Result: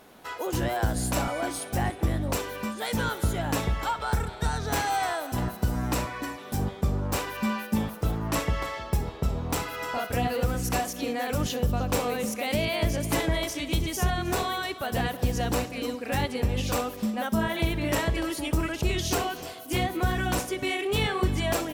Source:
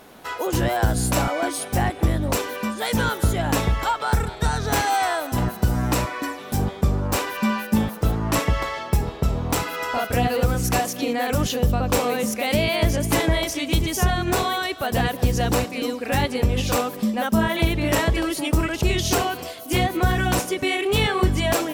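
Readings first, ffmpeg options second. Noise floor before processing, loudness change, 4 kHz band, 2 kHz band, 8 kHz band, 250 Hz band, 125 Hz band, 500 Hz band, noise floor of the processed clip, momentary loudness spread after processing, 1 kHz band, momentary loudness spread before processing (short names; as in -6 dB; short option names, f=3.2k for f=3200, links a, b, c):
-36 dBFS, -6.0 dB, -6.0 dB, -6.0 dB, -6.0 dB, -6.0 dB, -6.0 dB, -6.0 dB, -41 dBFS, 4 LU, -6.0 dB, 5 LU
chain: -af "aecho=1:1:61|312:0.126|0.126,volume=-6dB"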